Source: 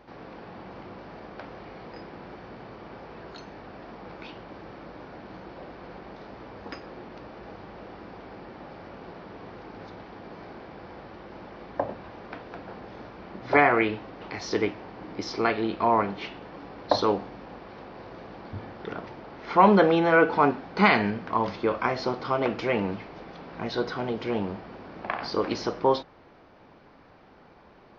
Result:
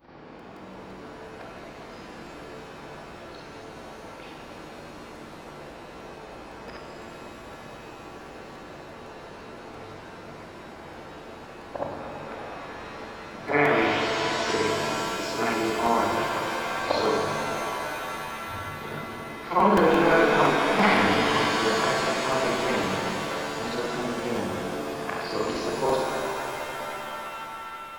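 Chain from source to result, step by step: short-time reversal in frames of 0.137 s; crackling interface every 0.17 s, samples 128, repeat, from 0.39; shimmer reverb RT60 3.8 s, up +7 st, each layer -2 dB, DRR 1.5 dB

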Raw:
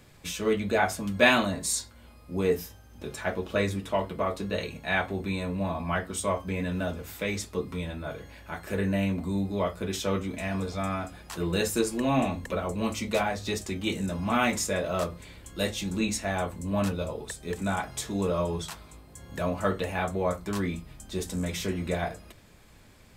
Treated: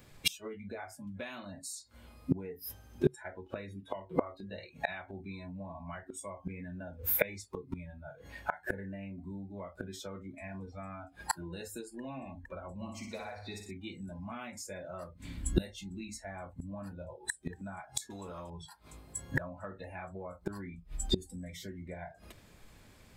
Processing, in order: spectral noise reduction 21 dB; 15.15–15.62 resonant low shelf 340 Hz +7.5 dB, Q 3; compressor 16:1, threshold -29 dBFS, peak gain reduction 15.5 dB; 12.74–13.71 flutter echo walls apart 10.3 m, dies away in 0.63 s; flipped gate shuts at -33 dBFS, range -28 dB; 18.1–18.5 spectral compressor 2:1; gain +18 dB

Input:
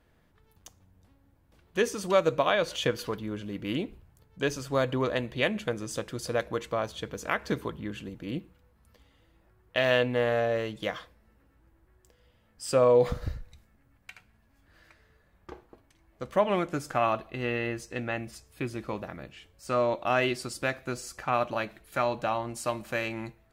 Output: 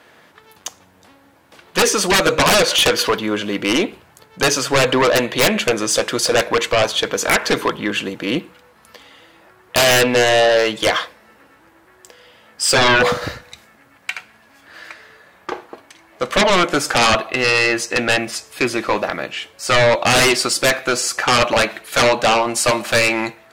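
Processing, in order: weighting filter A; sine folder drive 18 dB, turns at -9.5 dBFS

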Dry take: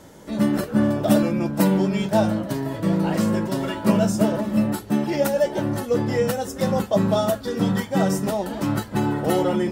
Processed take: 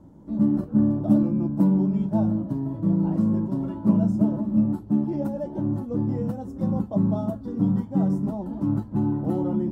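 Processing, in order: EQ curve 310 Hz 0 dB, 430 Hz -13 dB, 990 Hz -10 dB, 1900 Hz -27 dB

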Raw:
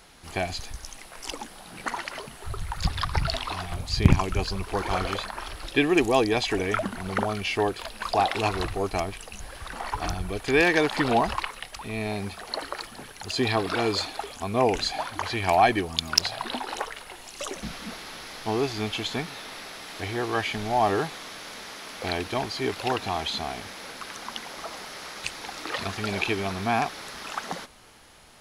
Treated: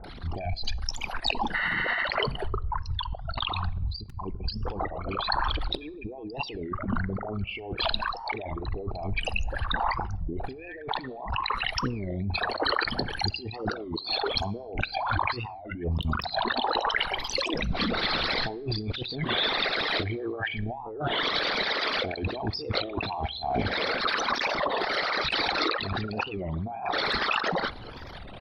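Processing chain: formant sharpening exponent 3; resonant high shelf 5600 Hz -9.5 dB, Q 3; in parallel at -11.5 dB: wrapped overs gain 6 dB; on the sum: bands offset in time lows, highs 40 ms, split 950 Hz; spectral repair 1.57–2, 740–7800 Hz after; negative-ratio compressor -35 dBFS, ratio -1; on a send at -20 dB: reverb RT60 0.95 s, pre-delay 5 ms; on the sum: record warp 33 1/3 rpm, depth 250 cents; gain +3.5 dB

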